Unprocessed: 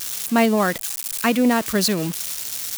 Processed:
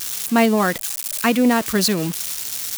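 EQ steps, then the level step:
notch filter 600 Hz, Q 12
+1.5 dB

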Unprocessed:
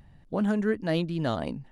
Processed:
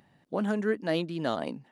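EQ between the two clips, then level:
high-pass filter 230 Hz 12 dB per octave
0.0 dB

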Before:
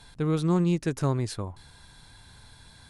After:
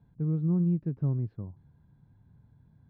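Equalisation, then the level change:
resonant band-pass 150 Hz, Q 1.4
high-frequency loss of the air 330 metres
0.0 dB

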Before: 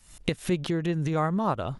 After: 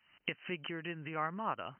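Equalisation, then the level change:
high-pass filter 370 Hz 12 dB per octave
linear-phase brick-wall low-pass 3,100 Hz
parametric band 500 Hz −14 dB 2.5 octaves
+1.0 dB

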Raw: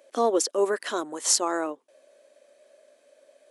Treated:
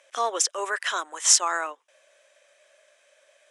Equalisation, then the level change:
high-pass filter 1,300 Hz 12 dB per octave
low-pass filter 7,100 Hz 12 dB per octave
parametric band 4,400 Hz −11 dB 0.26 octaves
+8.5 dB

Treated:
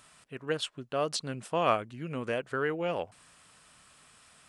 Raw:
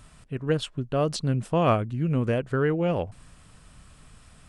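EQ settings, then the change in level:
high-pass filter 810 Hz 6 dB per octave
0.0 dB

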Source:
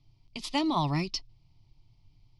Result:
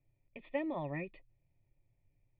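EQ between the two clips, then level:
formant resonators in series e
+6.5 dB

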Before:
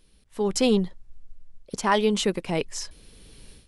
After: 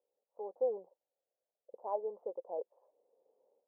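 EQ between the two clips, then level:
high-pass with resonance 520 Hz, resonance Q 4.9
Butterworth low-pass 880 Hz 48 dB per octave
first difference
+3.0 dB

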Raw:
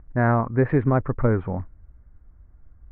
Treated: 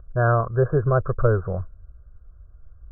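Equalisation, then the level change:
linear-phase brick-wall low-pass 1,700 Hz
phaser with its sweep stopped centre 1,300 Hz, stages 8
+4.0 dB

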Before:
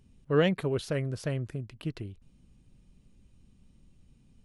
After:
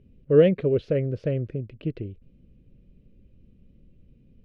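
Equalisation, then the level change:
high-frequency loss of the air 240 metres
low shelf with overshoot 670 Hz +8 dB, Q 3
parametric band 2,500 Hz +6.5 dB 0.8 octaves
−3.5 dB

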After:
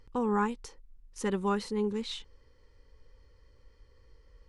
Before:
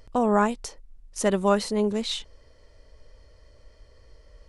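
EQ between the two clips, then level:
Butterworth band-reject 650 Hz, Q 2.8
high-shelf EQ 4,900 Hz −8 dB
−6.0 dB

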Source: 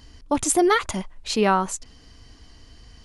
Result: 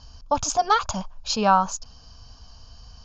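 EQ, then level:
Chebyshev low-pass with heavy ripple 6,900 Hz, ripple 6 dB
phaser with its sweep stopped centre 830 Hz, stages 4
+8.5 dB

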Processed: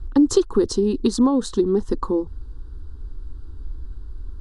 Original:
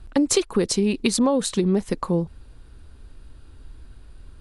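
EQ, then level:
low-pass filter 6,000 Hz 12 dB per octave
low-shelf EQ 310 Hz +12 dB
phaser with its sweep stopped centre 620 Hz, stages 6
0.0 dB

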